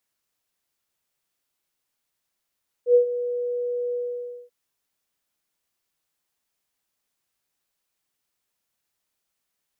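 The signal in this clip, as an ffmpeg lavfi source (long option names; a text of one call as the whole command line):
ffmpeg -f lavfi -i "aevalsrc='0.299*sin(2*PI*487*t)':duration=1.636:sample_rate=44100,afade=type=in:duration=0.087,afade=type=out:start_time=0.087:duration=0.104:silence=0.211,afade=type=out:start_time=1.08:duration=0.556" out.wav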